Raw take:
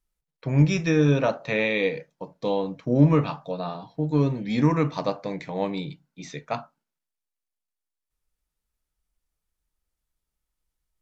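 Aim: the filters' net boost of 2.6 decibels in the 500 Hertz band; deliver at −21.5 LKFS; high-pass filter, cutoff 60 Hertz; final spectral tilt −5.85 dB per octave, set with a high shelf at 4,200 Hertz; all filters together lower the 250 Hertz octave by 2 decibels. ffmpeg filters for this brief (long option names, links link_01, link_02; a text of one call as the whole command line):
ffmpeg -i in.wav -af "highpass=60,equalizer=frequency=250:width_type=o:gain=-4,equalizer=frequency=500:width_type=o:gain=4,highshelf=frequency=4200:gain=-7.5,volume=3dB" out.wav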